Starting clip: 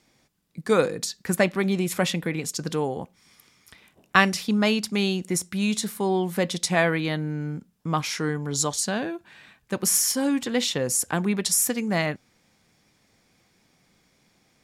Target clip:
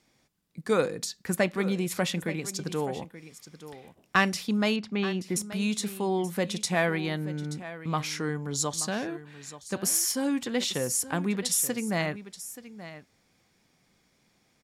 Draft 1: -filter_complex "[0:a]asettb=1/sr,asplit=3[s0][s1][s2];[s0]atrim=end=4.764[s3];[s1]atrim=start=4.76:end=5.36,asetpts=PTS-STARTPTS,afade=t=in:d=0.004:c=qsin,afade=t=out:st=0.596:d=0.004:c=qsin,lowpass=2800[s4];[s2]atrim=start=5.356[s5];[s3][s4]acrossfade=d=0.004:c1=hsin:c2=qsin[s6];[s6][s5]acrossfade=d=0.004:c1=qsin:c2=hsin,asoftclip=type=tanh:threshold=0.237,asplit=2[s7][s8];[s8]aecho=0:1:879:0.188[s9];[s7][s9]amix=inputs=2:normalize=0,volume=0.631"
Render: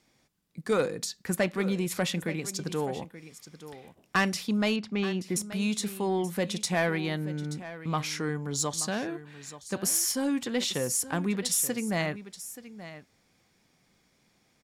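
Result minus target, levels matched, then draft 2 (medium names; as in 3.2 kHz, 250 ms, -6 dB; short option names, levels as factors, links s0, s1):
saturation: distortion +11 dB
-filter_complex "[0:a]asettb=1/sr,asplit=3[s0][s1][s2];[s0]atrim=end=4.764[s3];[s1]atrim=start=4.76:end=5.36,asetpts=PTS-STARTPTS,afade=t=in:d=0.004:c=qsin,afade=t=out:st=0.596:d=0.004:c=qsin,lowpass=2800[s4];[s2]atrim=start=5.356[s5];[s3][s4]acrossfade=d=0.004:c1=hsin:c2=qsin[s6];[s6][s5]acrossfade=d=0.004:c1=qsin:c2=hsin,asoftclip=type=tanh:threshold=0.631,asplit=2[s7][s8];[s8]aecho=0:1:879:0.188[s9];[s7][s9]amix=inputs=2:normalize=0,volume=0.631"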